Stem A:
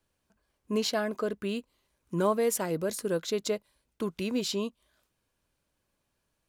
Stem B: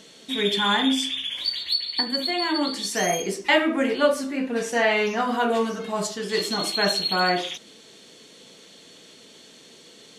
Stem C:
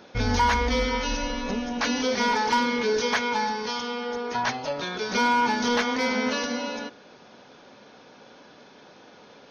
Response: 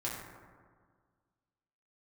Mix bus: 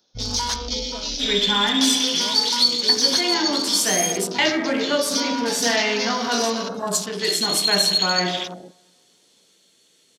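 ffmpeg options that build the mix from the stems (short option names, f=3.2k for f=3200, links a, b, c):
-filter_complex "[0:a]volume=-11.5dB[a];[1:a]crystalizer=i=2.5:c=0,adelay=900,volume=-2.5dB,asplit=2[b][c];[c]volume=-5dB[d];[2:a]highshelf=f=2.7k:g=-4,aexciter=amount=13.3:drive=2.3:freq=3.4k,volume=-6.5dB[e];[3:a]atrim=start_sample=2205[f];[d][f]afir=irnorm=-1:irlink=0[g];[a][b][e][g]amix=inputs=4:normalize=0,afwtdn=0.0282,acrossover=split=320|3000[h][i][j];[i]acompressor=threshold=-23dB:ratio=2[k];[h][k][j]amix=inputs=3:normalize=0"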